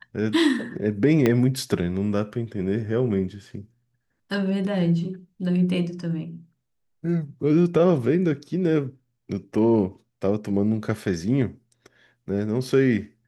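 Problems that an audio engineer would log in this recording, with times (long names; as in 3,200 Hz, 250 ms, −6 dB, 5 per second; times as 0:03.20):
0:01.26: click −8 dBFS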